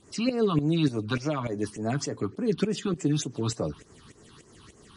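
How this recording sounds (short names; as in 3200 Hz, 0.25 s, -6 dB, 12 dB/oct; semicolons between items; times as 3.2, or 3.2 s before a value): phasing stages 6, 3.4 Hz, lowest notch 500–3700 Hz; tremolo saw up 3.4 Hz, depth 80%; MP3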